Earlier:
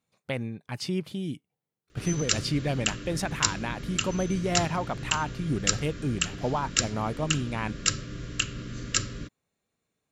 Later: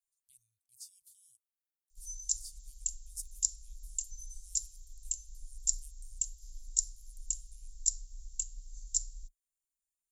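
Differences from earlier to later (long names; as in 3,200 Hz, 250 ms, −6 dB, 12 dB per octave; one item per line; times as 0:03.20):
background +3.5 dB
master: add inverse Chebyshev band-stop filter 180–1,600 Hz, stop band 80 dB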